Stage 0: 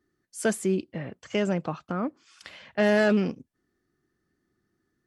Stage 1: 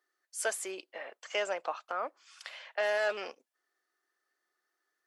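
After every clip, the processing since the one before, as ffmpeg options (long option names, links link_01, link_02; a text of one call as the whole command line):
ffmpeg -i in.wav -af "highpass=frequency=570:width=0.5412,highpass=frequency=570:width=1.3066,alimiter=limit=-20.5dB:level=0:latency=1:release=149" out.wav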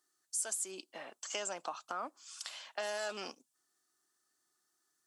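ffmpeg -i in.wav -af "equalizer=frequency=125:width_type=o:width=1:gain=7,equalizer=frequency=250:width_type=o:width=1:gain=5,equalizer=frequency=500:width_type=o:width=1:gain=-12,equalizer=frequency=2000:width_type=o:width=1:gain=-11,equalizer=frequency=8000:width_type=o:width=1:gain=10,acompressor=threshold=-39dB:ratio=4,volume=4dB" out.wav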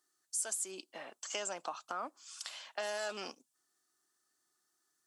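ffmpeg -i in.wav -af anull out.wav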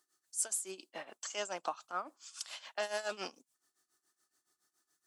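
ffmpeg -i in.wav -af "tremolo=f=7.1:d=0.82,volume=4dB" out.wav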